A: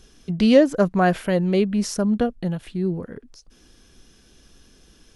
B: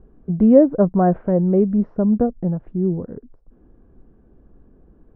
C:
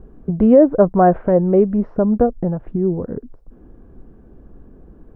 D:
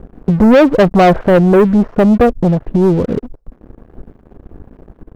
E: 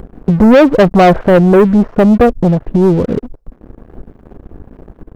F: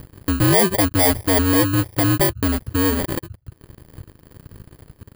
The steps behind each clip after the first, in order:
Bessel low-pass 700 Hz, order 4; gain +4 dB
dynamic EQ 190 Hz, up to -8 dB, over -29 dBFS, Q 0.79; maximiser +8.5 dB; gain -1 dB
sample leveller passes 3; gain -1 dB
upward compressor, threshold -28 dBFS; gain +1.5 dB
FFT order left unsorted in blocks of 32 samples; ring modulator 95 Hz; gain -6.5 dB

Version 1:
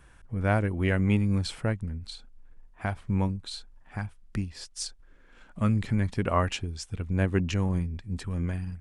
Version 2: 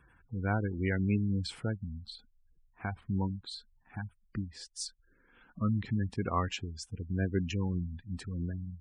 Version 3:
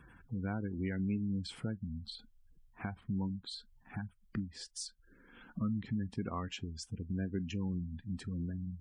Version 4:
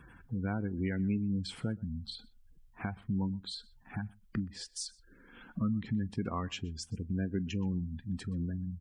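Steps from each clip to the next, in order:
HPF 77 Hz 6 dB/oct; spectral gate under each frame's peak -20 dB strong; bell 600 Hz -11.5 dB 0.21 oct; gain -4 dB
compressor 2.5:1, threshold -47 dBFS, peak gain reduction 14.5 dB; small resonant body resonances 210/3200 Hz, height 7 dB, ringing for 20 ms; on a send at -20.5 dB: reverb, pre-delay 7 ms; on the sum: gain +3.5 dB
echo 0.124 s -24 dB; gain +3 dB

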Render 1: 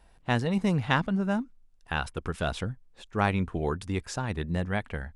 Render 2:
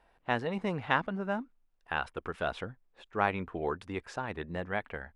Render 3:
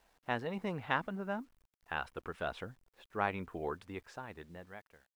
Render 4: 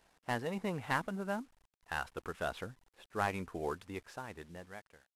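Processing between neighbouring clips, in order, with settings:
tone controls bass -12 dB, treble -15 dB; gain -1 dB
ending faded out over 1.53 s; bit-crush 11-bit; gain -5 dB
CVSD 64 kbps; gain +1 dB

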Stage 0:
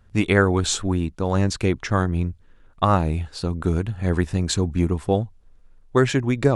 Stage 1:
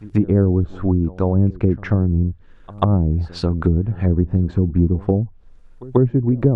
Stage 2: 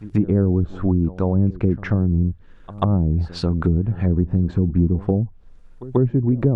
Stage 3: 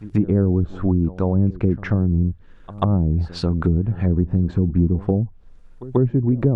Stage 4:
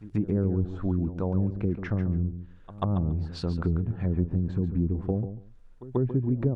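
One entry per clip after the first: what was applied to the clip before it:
treble ducked by the level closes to 320 Hz, closed at -17 dBFS; pre-echo 0.139 s -21 dB; gain +5.5 dB
bell 180 Hz +2.5 dB; in parallel at 0 dB: limiter -13 dBFS, peak gain reduction 12 dB; on the sum: gain -6 dB
nothing audible
feedback echo 0.141 s, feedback 16%, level -10.5 dB; gain -8.5 dB

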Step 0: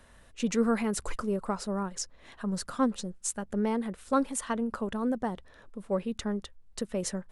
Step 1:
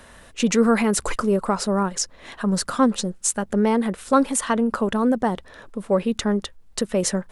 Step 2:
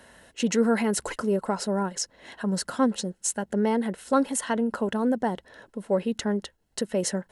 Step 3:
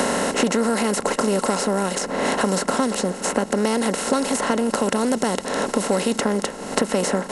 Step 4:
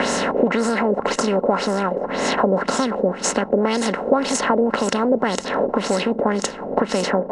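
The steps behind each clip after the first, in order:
low shelf 120 Hz -7 dB; in parallel at -1.5 dB: limiter -26.5 dBFS, peak gain reduction 11 dB; on the sum: gain +7 dB
notch comb 1200 Hz; gain -4 dB
per-bin compression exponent 0.4; three-band squash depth 100%; gain -1 dB
LFO low-pass sine 1.9 Hz 520–7100 Hz

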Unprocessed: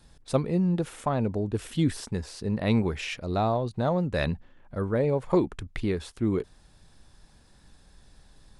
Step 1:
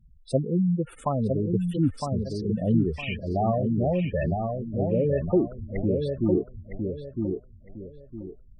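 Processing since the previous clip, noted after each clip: spectral gate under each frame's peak -10 dB strong; darkening echo 0.959 s, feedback 31%, low-pass 1800 Hz, level -4 dB; gain +1.5 dB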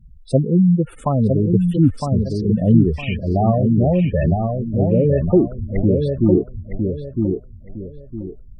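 low shelf 400 Hz +7.5 dB; gain +3.5 dB

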